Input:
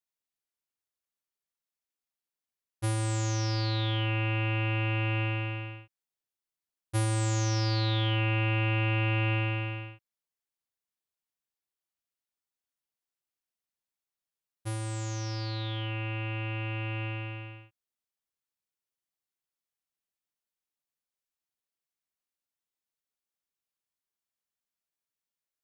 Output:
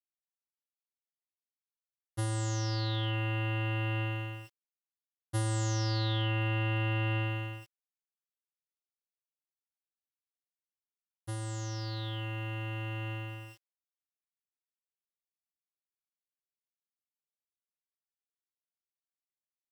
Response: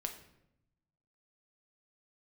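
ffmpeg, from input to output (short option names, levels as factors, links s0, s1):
-af "atempo=1.3,aeval=exprs='val(0)*gte(abs(val(0)),0.00376)':c=same,asuperstop=centerf=2400:order=8:qfactor=7,volume=0.708"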